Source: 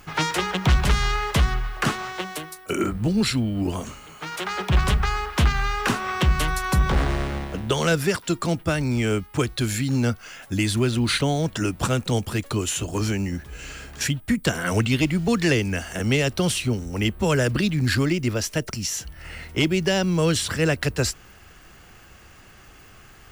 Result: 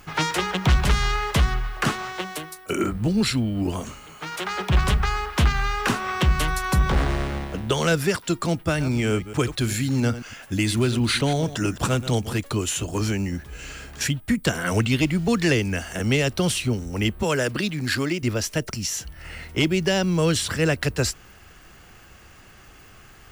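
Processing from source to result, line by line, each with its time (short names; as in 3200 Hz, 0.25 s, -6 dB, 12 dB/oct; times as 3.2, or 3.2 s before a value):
8.67–12.39 reverse delay 0.111 s, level -13 dB
17.23–18.23 HPF 270 Hz 6 dB/oct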